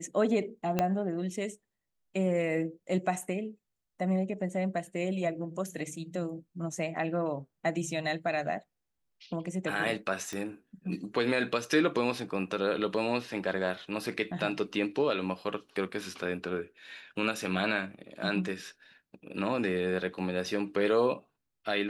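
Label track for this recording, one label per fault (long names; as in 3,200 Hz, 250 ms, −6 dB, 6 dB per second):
0.790000	0.790000	click −13 dBFS
10.330000	10.330000	click −22 dBFS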